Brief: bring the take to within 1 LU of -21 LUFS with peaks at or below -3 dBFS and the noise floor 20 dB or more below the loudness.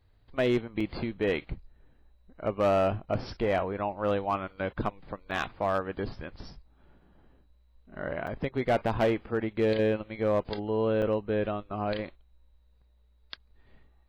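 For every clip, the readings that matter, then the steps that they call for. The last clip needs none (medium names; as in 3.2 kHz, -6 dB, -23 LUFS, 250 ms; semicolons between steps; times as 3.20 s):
clipped samples 0.5%; clipping level -19.0 dBFS; dropouts 4; longest dropout 4.7 ms; loudness -30.0 LUFS; peak level -19.0 dBFS; loudness target -21.0 LUFS
-> clip repair -19 dBFS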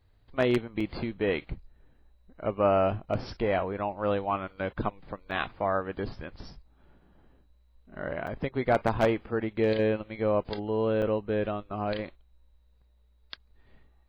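clipped samples 0.0%; dropouts 4; longest dropout 4.7 ms
-> interpolate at 0.80/5.31/8.27/11.02 s, 4.7 ms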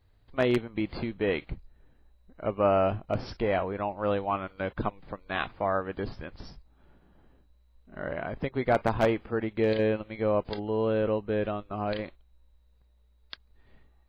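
dropouts 0; loudness -29.5 LUFS; peak level -10.0 dBFS; loudness target -21.0 LUFS
-> trim +8.5 dB; peak limiter -3 dBFS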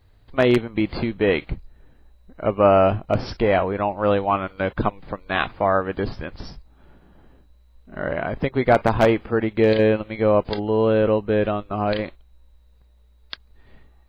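loudness -21.0 LUFS; peak level -3.0 dBFS; noise floor -54 dBFS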